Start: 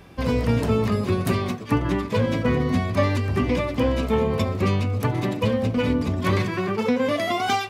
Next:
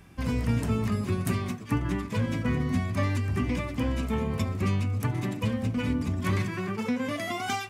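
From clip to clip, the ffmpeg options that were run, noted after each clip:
-af "equalizer=f=500:t=o:w=1:g=-9,equalizer=f=1000:t=o:w=1:g=-3,equalizer=f=4000:t=o:w=1:g=-6,equalizer=f=8000:t=o:w=1:g=4,volume=0.668"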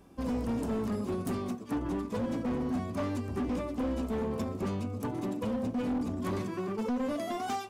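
-af "equalizer=f=125:t=o:w=1:g=-9,equalizer=f=250:t=o:w=1:g=7,equalizer=f=500:t=o:w=1:g=7,equalizer=f=1000:t=o:w=1:g=4,equalizer=f=2000:t=o:w=1:g=-9,volume=13.3,asoftclip=hard,volume=0.075,volume=0.531"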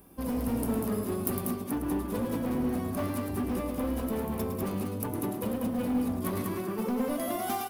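-filter_complex "[0:a]aexciter=amount=7.3:drive=6.3:freq=9800,asplit=2[s0][s1];[s1]aecho=0:1:107.9|192.4:0.398|0.562[s2];[s0][s2]amix=inputs=2:normalize=0"

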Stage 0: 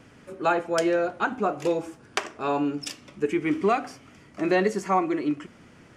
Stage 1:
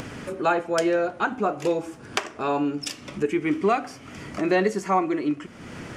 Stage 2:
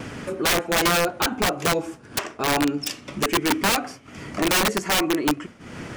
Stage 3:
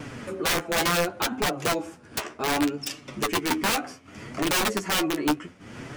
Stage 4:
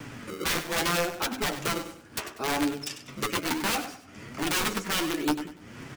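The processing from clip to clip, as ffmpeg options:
-af "acompressor=mode=upward:threshold=0.0562:ratio=2.5,volume=1.12"
-af "aeval=exprs='(mod(7.5*val(0)+1,2)-1)/7.5':c=same,agate=range=0.0224:threshold=0.0158:ratio=3:detection=peak,volume=1.41"
-af "flanger=delay=6.5:depth=7.7:regen=28:speed=0.67:shape=triangular"
-filter_complex "[0:a]acrossover=split=240|680|5500[s0][s1][s2][s3];[s1]acrusher=samples=29:mix=1:aa=0.000001:lfo=1:lforange=46.4:lforate=0.69[s4];[s0][s4][s2][s3]amix=inputs=4:normalize=0,aecho=1:1:97|194|291:0.266|0.0878|0.029,volume=0.708"

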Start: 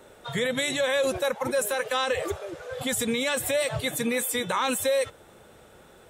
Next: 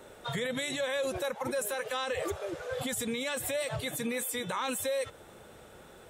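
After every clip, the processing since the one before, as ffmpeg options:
-af "alimiter=level_in=1.06:limit=0.0631:level=0:latency=1:release=133,volume=0.944"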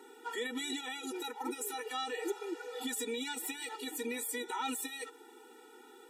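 -af "afftfilt=real='re*eq(mod(floor(b*sr/1024/250),2),1)':imag='im*eq(mod(floor(b*sr/1024/250),2),1)':win_size=1024:overlap=0.75"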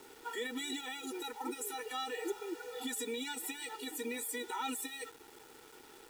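-af "acrusher=bits=8:mix=0:aa=0.000001,volume=0.841"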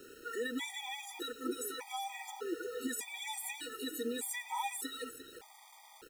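-filter_complex "[0:a]asplit=2[s0][s1];[s1]aecho=0:1:348:0.251[s2];[s0][s2]amix=inputs=2:normalize=0,afftfilt=real='re*gt(sin(2*PI*0.83*pts/sr)*(1-2*mod(floor(b*sr/1024/630),2)),0)':imag='im*gt(sin(2*PI*0.83*pts/sr)*(1-2*mod(floor(b*sr/1024/630),2)),0)':win_size=1024:overlap=0.75,volume=1.41"

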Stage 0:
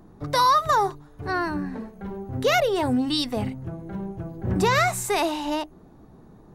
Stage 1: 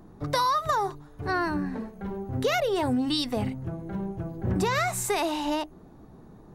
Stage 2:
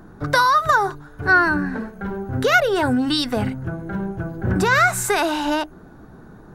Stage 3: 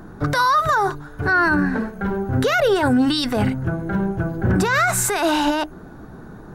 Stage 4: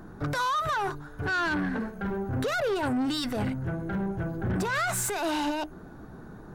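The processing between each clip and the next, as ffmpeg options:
-af "acompressor=threshold=0.0794:ratio=5"
-af "equalizer=f=1500:t=o:w=0.33:g=13.5,volume=2"
-af "alimiter=limit=0.178:level=0:latency=1:release=10,volume=1.68"
-af "asoftclip=type=tanh:threshold=0.126,volume=0.501"

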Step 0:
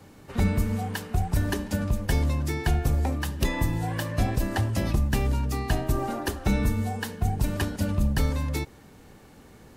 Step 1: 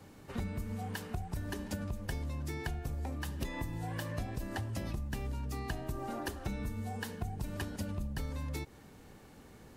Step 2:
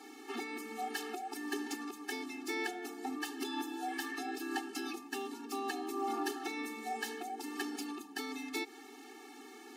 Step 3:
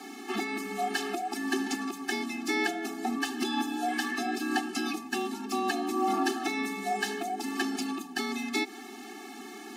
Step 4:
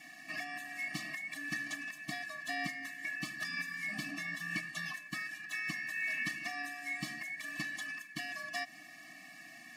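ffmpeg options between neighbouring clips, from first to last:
-af "acompressor=threshold=0.0316:ratio=6,volume=0.596"
-filter_complex "[0:a]equalizer=f=1200:w=0.54:g=-6,asplit=2[s0][s1];[s1]highpass=f=720:p=1,volume=8.91,asoftclip=type=tanh:threshold=0.0631[s2];[s0][s2]amix=inputs=2:normalize=0,lowpass=f=4100:p=1,volume=0.501,afftfilt=real='re*eq(mod(floor(b*sr/1024/230),2),1)':imag='im*eq(mod(floor(b*sr/1024/230),2),1)':win_size=1024:overlap=0.75,volume=1.26"
-filter_complex "[0:a]afreqshift=-25,acrossover=split=9000[s0][s1];[s1]acompressor=threshold=0.00141:ratio=4:attack=1:release=60[s2];[s0][s2]amix=inputs=2:normalize=0,volume=2.66"
-af "afftfilt=real='real(if(lt(b,272),68*(eq(floor(b/68),0)*1+eq(floor(b/68),1)*0+eq(floor(b/68),2)*3+eq(floor(b/68),3)*2)+mod(b,68),b),0)':imag='imag(if(lt(b,272),68*(eq(floor(b/68),0)*1+eq(floor(b/68),1)*0+eq(floor(b/68),2)*3+eq(floor(b/68),3)*2)+mod(b,68),b),0)':win_size=2048:overlap=0.75,volume=0.355"

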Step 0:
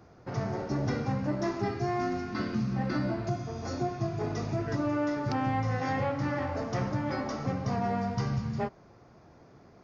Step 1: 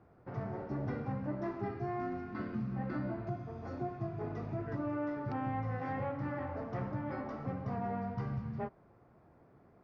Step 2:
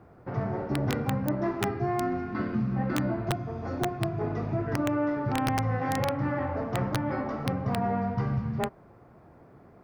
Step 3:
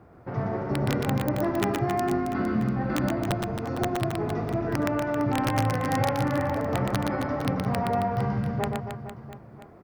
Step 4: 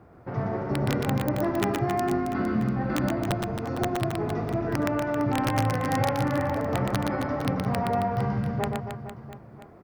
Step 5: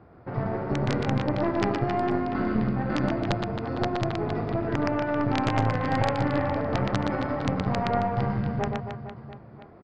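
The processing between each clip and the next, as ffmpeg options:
-af "lowpass=2000,volume=0.447"
-af "aeval=exprs='(mod(22.4*val(0)+1,2)-1)/22.4':c=same,volume=2.82"
-af "aecho=1:1:120|270|457.5|691.9|984.8:0.631|0.398|0.251|0.158|0.1,volume=1.12"
-af anull
-af "aresample=11025,aresample=44100,aeval=exprs='0.266*(cos(1*acos(clip(val(0)/0.266,-1,1)))-cos(1*PI/2))+0.119*(cos(2*acos(clip(val(0)/0.266,-1,1)))-cos(2*PI/2))':c=same"

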